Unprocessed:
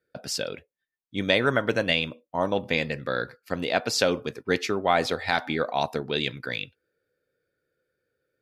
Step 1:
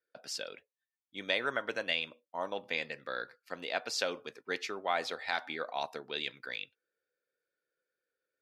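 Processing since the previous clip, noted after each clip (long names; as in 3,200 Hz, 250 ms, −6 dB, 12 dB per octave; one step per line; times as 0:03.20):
meter weighting curve A
level −9 dB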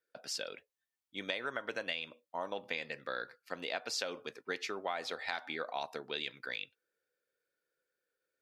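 downward compressor, threshold −34 dBFS, peak gain reduction 8.5 dB
level +1 dB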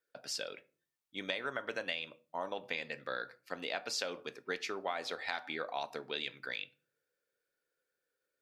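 rectangular room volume 300 cubic metres, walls furnished, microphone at 0.31 metres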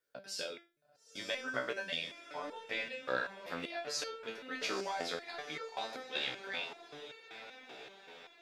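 feedback delay with all-pass diffusion 911 ms, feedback 54%, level −9.5 dB
step-sequenced resonator 5.2 Hz 64–450 Hz
level +10 dB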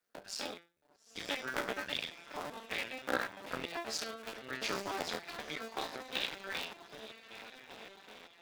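sub-harmonics by changed cycles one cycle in 2, muted
level +3 dB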